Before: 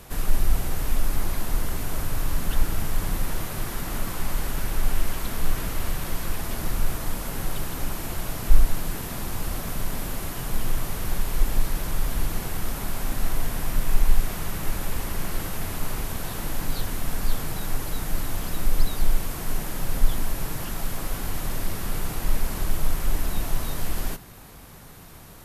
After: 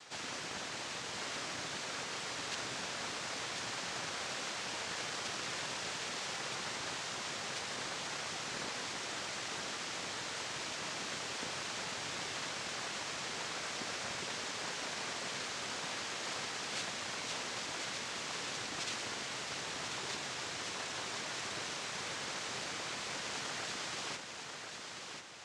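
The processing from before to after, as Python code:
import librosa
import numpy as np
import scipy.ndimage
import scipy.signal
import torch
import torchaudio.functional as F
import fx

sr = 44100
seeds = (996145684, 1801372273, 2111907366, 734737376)

y = fx.octave_divider(x, sr, octaves=1, level_db=2.0)
y = scipy.signal.sosfilt(scipy.signal.butter(2, 840.0, 'highpass', fs=sr, output='sos'), y)
y = fx.peak_eq(y, sr, hz=1400.0, db=-13.0, octaves=0.9)
y = fx.noise_vocoder(y, sr, seeds[0], bands=3)
y = fx.air_absorb(y, sr, metres=68.0)
y = fx.echo_feedback(y, sr, ms=1040, feedback_pct=35, wet_db=-6)
y = y * 10.0 ** (3.5 / 20.0)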